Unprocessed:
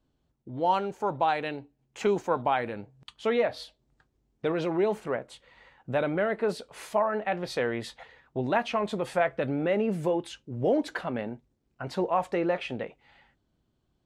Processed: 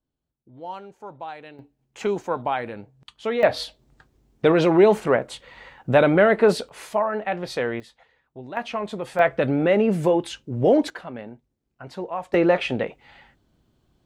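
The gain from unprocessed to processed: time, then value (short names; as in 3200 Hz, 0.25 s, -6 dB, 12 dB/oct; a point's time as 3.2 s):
-10 dB
from 1.59 s +1 dB
from 3.43 s +11 dB
from 6.69 s +3 dB
from 7.8 s -9 dB
from 8.57 s 0 dB
from 9.19 s +7.5 dB
from 10.9 s -3.5 dB
from 12.34 s +9 dB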